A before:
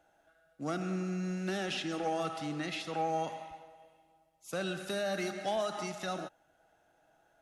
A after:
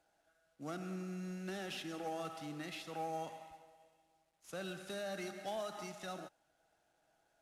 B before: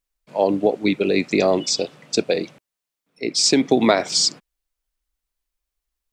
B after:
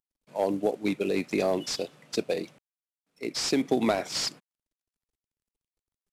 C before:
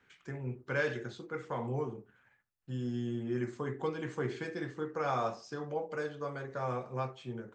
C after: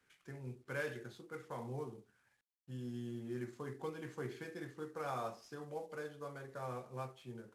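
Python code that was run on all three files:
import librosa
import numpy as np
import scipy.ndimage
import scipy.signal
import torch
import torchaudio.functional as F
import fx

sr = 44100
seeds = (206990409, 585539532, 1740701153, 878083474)

y = fx.cvsd(x, sr, bps=64000)
y = y * librosa.db_to_amplitude(-8.0)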